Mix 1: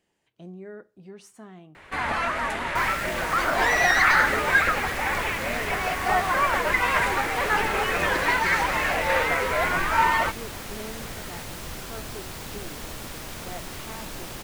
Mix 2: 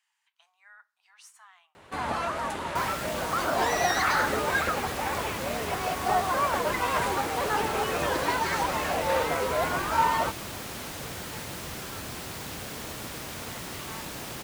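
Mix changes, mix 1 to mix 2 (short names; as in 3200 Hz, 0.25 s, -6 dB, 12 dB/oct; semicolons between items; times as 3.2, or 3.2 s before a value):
speech: add steep high-pass 890 Hz 48 dB/oct; first sound: add bell 2000 Hz -11 dB 1.1 oct; master: add HPF 73 Hz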